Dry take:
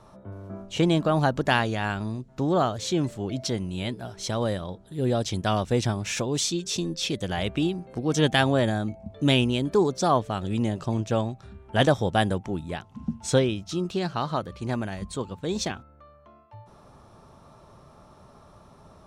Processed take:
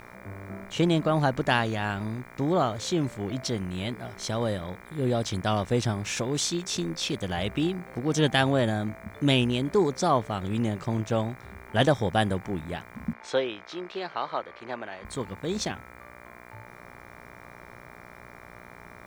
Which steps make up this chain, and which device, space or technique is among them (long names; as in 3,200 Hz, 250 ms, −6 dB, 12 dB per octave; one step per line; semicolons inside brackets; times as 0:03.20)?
video cassette with head-switching buzz (hum with harmonics 60 Hz, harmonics 40, −47 dBFS 0 dB per octave; white noise bed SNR 38 dB)
0:13.13–0:15.05: three-way crossover with the lows and the highs turned down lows −22 dB, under 350 Hz, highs −22 dB, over 4,700 Hz
level −1.5 dB